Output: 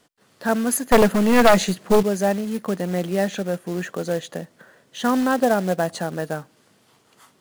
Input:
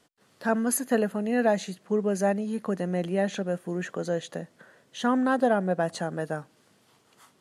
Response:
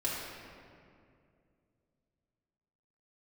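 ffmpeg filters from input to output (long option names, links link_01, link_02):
-filter_complex "[0:a]asettb=1/sr,asplit=3[link_01][link_02][link_03];[link_01]atrim=end=0.924[link_04];[link_02]atrim=start=0.92:end=2.03,asetpts=PTS-STARTPTS,afade=type=in:duration=0.004:curve=qsin,afade=type=out:start_time=1.106:duration=0.004:curve=qsin,aeval=exprs='0.299*(cos(1*acos(clip(val(0)/0.299,-1,1)))-cos(1*PI/2))+0.15*(cos(4*acos(clip(val(0)/0.299,-1,1)))-cos(4*PI/2))+0.106*(cos(5*acos(clip(val(0)/0.299,-1,1)))-cos(5*PI/2))+0.0422*(cos(6*acos(clip(val(0)/0.299,-1,1)))-cos(6*PI/2))+0.0168*(cos(8*acos(clip(val(0)/0.299,-1,1)))-cos(8*PI/2))':channel_layout=same[link_05];[link_03]atrim=start=2.026[link_06];[link_04][link_05]acrossfade=duration=0.004:curve1=hsin:curve2=qsin[link_07];[link_07][link_06]acrossfade=duration=0.004:curve1=qsin:curve2=hsin,acrusher=bits=4:mode=log:mix=0:aa=0.000001,volume=4dB"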